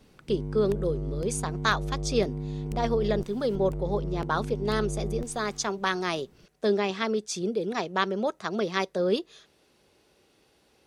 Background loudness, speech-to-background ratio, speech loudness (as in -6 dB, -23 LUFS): -35.0 LUFS, 6.0 dB, -29.0 LUFS